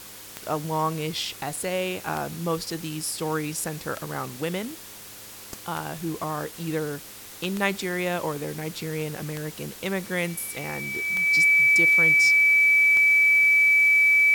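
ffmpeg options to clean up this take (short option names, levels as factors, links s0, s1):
-af "adeclick=t=4,bandreject=f=103:t=h:w=4,bandreject=f=206:t=h:w=4,bandreject=f=309:t=h:w=4,bandreject=f=412:t=h:w=4,bandreject=f=515:t=h:w=4,bandreject=f=2300:w=30,afwtdn=0.0079"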